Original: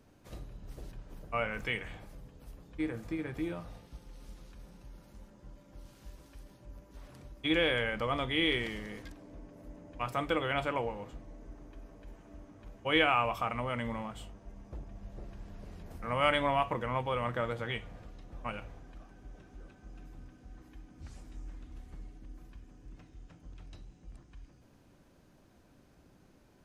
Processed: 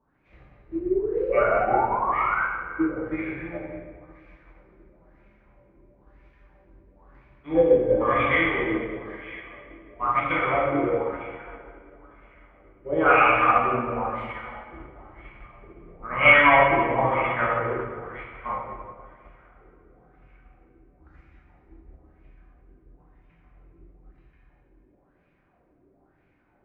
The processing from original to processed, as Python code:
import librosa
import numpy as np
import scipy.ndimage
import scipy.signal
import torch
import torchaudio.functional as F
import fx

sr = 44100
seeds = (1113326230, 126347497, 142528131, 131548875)

y = fx.echo_thinned(x, sr, ms=451, feedback_pct=61, hz=410.0, wet_db=-12.5)
y = fx.filter_lfo_lowpass(y, sr, shape='sine', hz=1.0, low_hz=330.0, high_hz=2400.0, q=6.6)
y = fx.spec_paint(y, sr, seeds[0], shape='rise', start_s=0.72, length_s=1.72, low_hz=320.0, high_hz=1600.0, level_db=-28.0)
y = fx.rev_plate(y, sr, seeds[1], rt60_s=2.1, hf_ratio=0.8, predelay_ms=0, drr_db=-7.0)
y = fx.upward_expand(y, sr, threshold_db=-39.0, expansion=1.5)